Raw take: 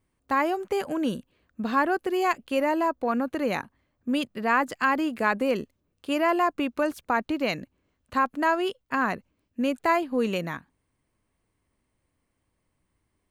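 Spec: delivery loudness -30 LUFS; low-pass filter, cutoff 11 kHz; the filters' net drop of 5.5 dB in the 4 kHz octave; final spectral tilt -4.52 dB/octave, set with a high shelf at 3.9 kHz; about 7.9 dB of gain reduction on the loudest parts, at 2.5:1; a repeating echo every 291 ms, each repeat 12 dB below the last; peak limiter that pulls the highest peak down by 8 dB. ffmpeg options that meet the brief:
-af "lowpass=11000,highshelf=f=3900:g=-5,equalizer=f=4000:t=o:g=-5.5,acompressor=threshold=0.0282:ratio=2.5,alimiter=level_in=1.19:limit=0.0631:level=0:latency=1,volume=0.841,aecho=1:1:291|582|873:0.251|0.0628|0.0157,volume=1.88"

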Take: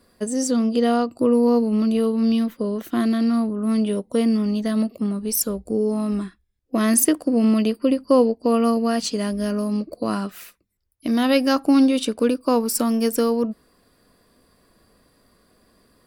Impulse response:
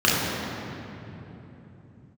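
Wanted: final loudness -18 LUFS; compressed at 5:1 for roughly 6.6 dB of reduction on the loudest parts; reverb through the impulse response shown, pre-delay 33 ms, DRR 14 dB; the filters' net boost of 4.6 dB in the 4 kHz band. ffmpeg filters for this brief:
-filter_complex "[0:a]equalizer=f=4000:t=o:g=6,acompressor=threshold=0.112:ratio=5,asplit=2[s0][s1];[1:a]atrim=start_sample=2205,adelay=33[s2];[s1][s2]afir=irnorm=-1:irlink=0,volume=0.0178[s3];[s0][s3]amix=inputs=2:normalize=0,volume=1.88"

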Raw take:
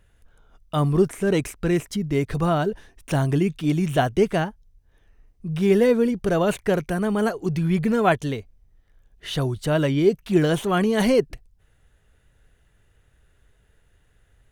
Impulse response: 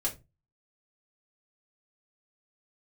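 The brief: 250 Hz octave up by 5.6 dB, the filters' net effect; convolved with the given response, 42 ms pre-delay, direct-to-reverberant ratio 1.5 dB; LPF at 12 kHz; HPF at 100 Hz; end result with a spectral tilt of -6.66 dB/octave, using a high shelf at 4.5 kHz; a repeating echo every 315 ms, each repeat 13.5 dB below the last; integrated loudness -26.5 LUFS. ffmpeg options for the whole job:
-filter_complex "[0:a]highpass=100,lowpass=12000,equalizer=f=250:t=o:g=8,highshelf=f=4500:g=-3.5,aecho=1:1:315|630:0.211|0.0444,asplit=2[s0][s1];[1:a]atrim=start_sample=2205,adelay=42[s2];[s1][s2]afir=irnorm=-1:irlink=0,volume=0.501[s3];[s0][s3]amix=inputs=2:normalize=0,volume=0.299"

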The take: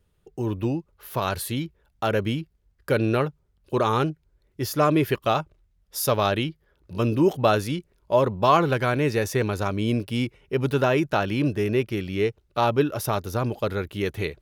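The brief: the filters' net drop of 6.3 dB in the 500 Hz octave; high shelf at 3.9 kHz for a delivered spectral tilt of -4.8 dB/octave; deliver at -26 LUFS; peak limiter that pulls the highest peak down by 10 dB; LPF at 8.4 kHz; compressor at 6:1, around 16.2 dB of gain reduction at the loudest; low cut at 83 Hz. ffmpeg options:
-af "highpass=83,lowpass=8400,equalizer=f=500:t=o:g=-8.5,highshelf=f=3900:g=6,acompressor=threshold=0.0224:ratio=6,volume=4.47,alimiter=limit=0.2:level=0:latency=1"

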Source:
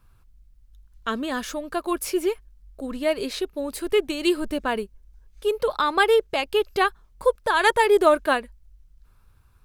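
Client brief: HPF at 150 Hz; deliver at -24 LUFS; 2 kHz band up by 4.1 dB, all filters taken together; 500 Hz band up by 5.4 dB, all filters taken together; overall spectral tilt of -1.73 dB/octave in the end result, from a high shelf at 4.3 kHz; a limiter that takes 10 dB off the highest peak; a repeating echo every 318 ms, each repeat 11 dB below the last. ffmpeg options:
-af "highpass=150,equalizer=f=500:t=o:g=6.5,equalizer=f=2000:t=o:g=3.5,highshelf=f=4300:g=7,alimiter=limit=0.316:level=0:latency=1,aecho=1:1:318|636|954:0.282|0.0789|0.0221,volume=0.794"

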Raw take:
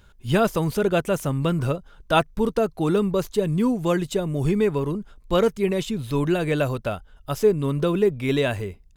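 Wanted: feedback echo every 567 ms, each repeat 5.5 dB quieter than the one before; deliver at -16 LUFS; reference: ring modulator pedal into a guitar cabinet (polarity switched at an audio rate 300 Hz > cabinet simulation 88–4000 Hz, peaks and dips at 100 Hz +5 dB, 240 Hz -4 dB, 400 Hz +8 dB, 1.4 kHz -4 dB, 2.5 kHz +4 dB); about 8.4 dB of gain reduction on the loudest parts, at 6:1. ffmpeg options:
-af "acompressor=threshold=0.0708:ratio=6,aecho=1:1:567|1134|1701|2268|2835|3402|3969:0.531|0.281|0.149|0.079|0.0419|0.0222|0.0118,aeval=exprs='val(0)*sgn(sin(2*PI*300*n/s))':c=same,highpass=88,equalizer=f=100:t=q:w=4:g=5,equalizer=f=240:t=q:w=4:g=-4,equalizer=f=400:t=q:w=4:g=8,equalizer=f=1400:t=q:w=4:g=-4,equalizer=f=2500:t=q:w=4:g=4,lowpass=f=4000:w=0.5412,lowpass=f=4000:w=1.3066,volume=3.16"

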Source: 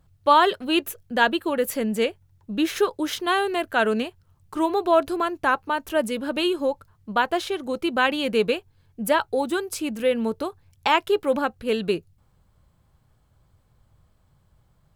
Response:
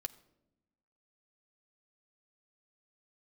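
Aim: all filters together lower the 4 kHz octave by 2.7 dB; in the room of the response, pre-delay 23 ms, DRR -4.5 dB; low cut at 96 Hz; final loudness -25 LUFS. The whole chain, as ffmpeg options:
-filter_complex "[0:a]highpass=96,equalizer=f=4000:t=o:g=-4,asplit=2[s0][s1];[1:a]atrim=start_sample=2205,adelay=23[s2];[s1][s2]afir=irnorm=-1:irlink=0,volume=2.11[s3];[s0][s3]amix=inputs=2:normalize=0,volume=0.447"

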